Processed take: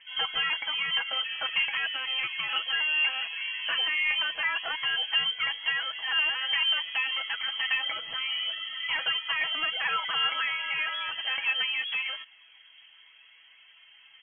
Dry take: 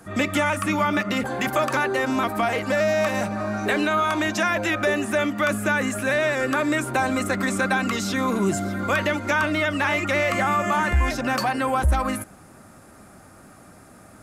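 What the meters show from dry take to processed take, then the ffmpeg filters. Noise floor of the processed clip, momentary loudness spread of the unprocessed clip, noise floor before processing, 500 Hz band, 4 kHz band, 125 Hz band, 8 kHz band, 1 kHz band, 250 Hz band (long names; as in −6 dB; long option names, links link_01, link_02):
−56 dBFS, 3 LU, −48 dBFS, −26.0 dB, +8.5 dB, below −30 dB, below −40 dB, −13.0 dB, below −35 dB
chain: -af "highpass=120,aphaser=in_gain=1:out_gain=1:delay=4:decay=0.31:speed=0.39:type=triangular,lowpass=frequency=2900:width_type=q:width=0.5098,lowpass=frequency=2900:width_type=q:width=0.6013,lowpass=frequency=2900:width_type=q:width=0.9,lowpass=frequency=2900:width_type=q:width=2.563,afreqshift=-3400,aecho=1:1:6.1:0.55,volume=-8.5dB"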